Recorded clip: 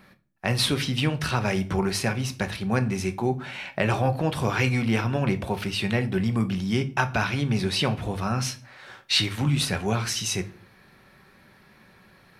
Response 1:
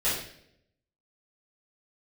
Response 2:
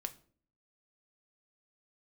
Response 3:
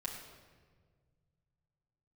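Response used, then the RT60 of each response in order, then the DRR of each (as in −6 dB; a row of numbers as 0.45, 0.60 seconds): 2; 0.70, 0.50, 1.6 seconds; −12.5, 8.0, −4.0 decibels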